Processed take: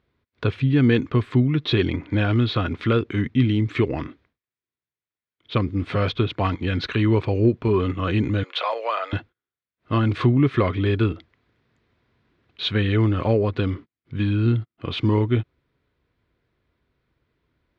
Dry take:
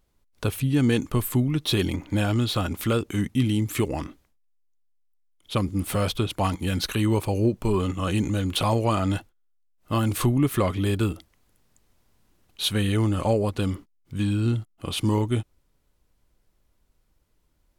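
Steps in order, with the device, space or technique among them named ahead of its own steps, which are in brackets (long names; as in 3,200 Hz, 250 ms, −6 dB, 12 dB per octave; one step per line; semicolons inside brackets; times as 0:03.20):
0:08.43–0:09.13: Chebyshev high-pass filter 520 Hz, order 4
guitar cabinet (loudspeaker in its box 99–3,400 Hz, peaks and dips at 190 Hz −8 dB, 300 Hz −3 dB, 580 Hz −6 dB, 830 Hz −9 dB, 1,200 Hz −3 dB, 2,900 Hz −6 dB)
level +6.5 dB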